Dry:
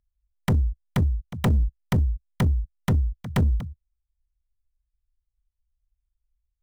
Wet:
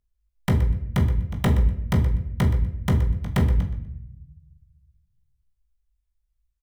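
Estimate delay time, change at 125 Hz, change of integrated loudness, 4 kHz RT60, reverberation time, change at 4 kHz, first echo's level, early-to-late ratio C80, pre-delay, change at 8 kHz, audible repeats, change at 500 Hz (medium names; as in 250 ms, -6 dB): 123 ms, +2.0 dB, +2.0 dB, 0.55 s, 0.75 s, +1.5 dB, -14.0 dB, 10.5 dB, 16 ms, +1.0 dB, 1, +2.5 dB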